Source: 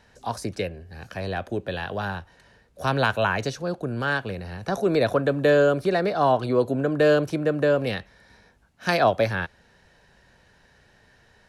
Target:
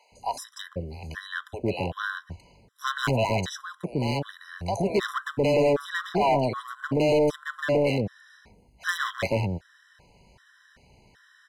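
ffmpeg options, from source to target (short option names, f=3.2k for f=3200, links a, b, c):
-filter_complex "[0:a]acrossover=split=560[a][b];[a]adelay=120[c];[c][b]amix=inputs=2:normalize=0,volume=21dB,asoftclip=hard,volume=-21dB,afftfilt=real='re*gt(sin(2*PI*1.3*pts/sr)*(1-2*mod(floor(b*sr/1024/1000),2)),0)':imag='im*gt(sin(2*PI*1.3*pts/sr)*(1-2*mod(floor(b*sr/1024/1000),2)),0)':win_size=1024:overlap=0.75,volume=3.5dB"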